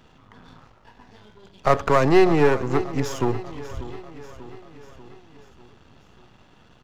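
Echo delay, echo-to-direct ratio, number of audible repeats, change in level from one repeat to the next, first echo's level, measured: 591 ms, −14.0 dB, 4, −5.0 dB, −15.5 dB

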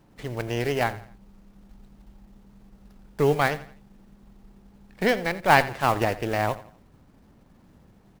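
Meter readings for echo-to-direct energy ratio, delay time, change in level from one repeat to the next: −16.0 dB, 85 ms, −8.5 dB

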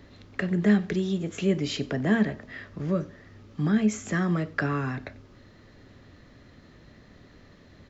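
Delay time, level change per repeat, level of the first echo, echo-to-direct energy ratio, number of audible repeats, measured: 93 ms, −9.5 dB, −22.0 dB, −21.5 dB, 2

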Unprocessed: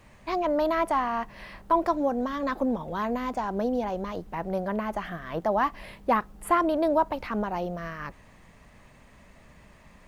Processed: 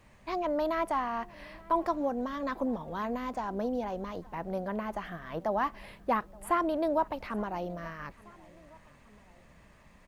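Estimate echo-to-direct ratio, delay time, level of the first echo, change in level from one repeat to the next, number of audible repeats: −22.0 dB, 874 ms, −23.5 dB, −4.5 dB, 2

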